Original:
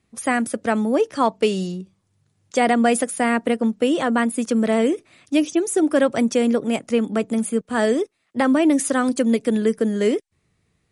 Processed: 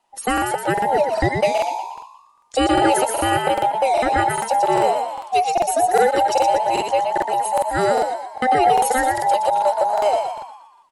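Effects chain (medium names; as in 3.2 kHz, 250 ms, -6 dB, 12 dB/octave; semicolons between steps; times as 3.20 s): every band turned upside down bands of 1 kHz; frequency-shifting echo 119 ms, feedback 46%, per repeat +59 Hz, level -5 dB; crackling interface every 0.40 s, samples 2048, repeat, from 0.33 s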